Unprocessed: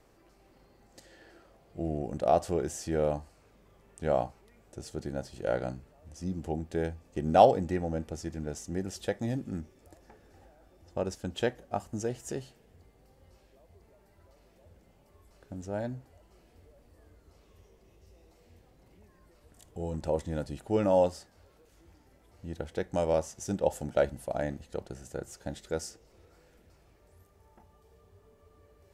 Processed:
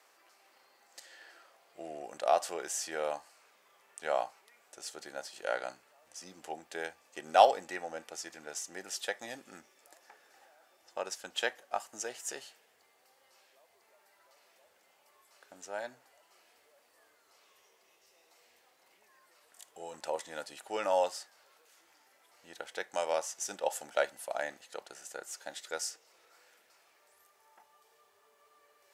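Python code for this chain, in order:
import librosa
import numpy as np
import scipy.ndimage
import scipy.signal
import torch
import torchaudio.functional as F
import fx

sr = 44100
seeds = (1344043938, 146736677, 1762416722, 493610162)

y = scipy.signal.sosfilt(scipy.signal.butter(2, 990.0, 'highpass', fs=sr, output='sos'), x)
y = F.gain(torch.from_numpy(y), 5.0).numpy()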